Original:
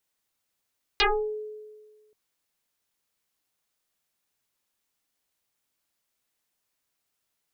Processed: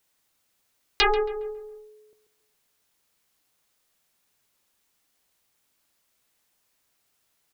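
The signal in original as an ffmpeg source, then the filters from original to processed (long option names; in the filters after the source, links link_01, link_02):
-f lavfi -i "aevalsrc='0.141*pow(10,-3*t/1.54)*sin(2*PI*427*t+12*pow(10,-3*t/0.36)*sin(2*PI*0.96*427*t))':duration=1.13:sample_rate=44100"
-filter_complex "[0:a]asplit=2[link_01][link_02];[link_02]acompressor=threshold=-35dB:ratio=6,volume=3dB[link_03];[link_01][link_03]amix=inputs=2:normalize=0,asplit=2[link_04][link_05];[link_05]adelay=137,lowpass=frequency=1800:poles=1,volume=-11dB,asplit=2[link_06][link_07];[link_07]adelay=137,lowpass=frequency=1800:poles=1,volume=0.46,asplit=2[link_08][link_09];[link_09]adelay=137,lowpass=frequency=1800:poles=1,volume=0.46,asplit=2[link_10][link_11];[link_11]adelay=137,lowpass=frequency=1800:poles=1,volume=0.46,asplit=2[link_12][link_13];[link_13]adelay=137,lowpass=frequency=1800:poles=1,volume=0.46[link_14];[link_04][link_06][link_08][link_10][link_12][link_14]amix=inputs=6:normalize=0"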